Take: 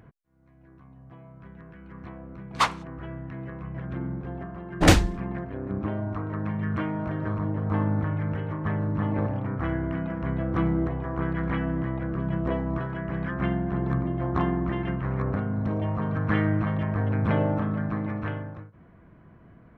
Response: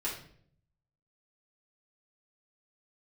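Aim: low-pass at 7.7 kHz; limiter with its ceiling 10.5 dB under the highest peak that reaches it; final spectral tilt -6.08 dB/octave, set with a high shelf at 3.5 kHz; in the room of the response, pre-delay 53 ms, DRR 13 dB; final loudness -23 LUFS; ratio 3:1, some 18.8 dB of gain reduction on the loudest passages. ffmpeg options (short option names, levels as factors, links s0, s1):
-filter_complex "[0:a]lowpass=7700,highshelf=f=3500:g=8,acompressor=threshold=0.0158:ratio=3,alimiter=level_in=1.88:limit=0.0631:level=0:latency=1,volume=0.531,asplit=2[s0][s1];[1:a]atrim=start_sample=2205,adelay=53[s2];[s1][s2]afir=irnorm=-1:irlink=0,volume=0.141[s3];[s0][s3]amix=inputs=2:normalize=0,volume=6.68"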